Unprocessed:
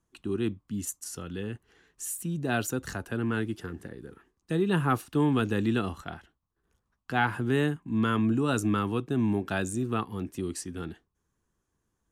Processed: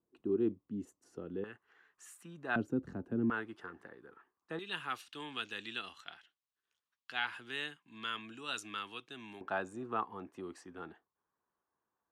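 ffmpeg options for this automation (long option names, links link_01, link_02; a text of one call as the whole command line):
ffmpeg -i in.wav -af "asetnsamples=nb_out_samples=441:pad=0,asendcmd='1.44 bandpass f 1300;2.56 bandpass f 260;3.3 bandpass f 1100;4.59 bandpass f 3300;9.41 bandpass f 920',bandpass=frequency=400:width_type=q:width=1.4:csg=0" out.wav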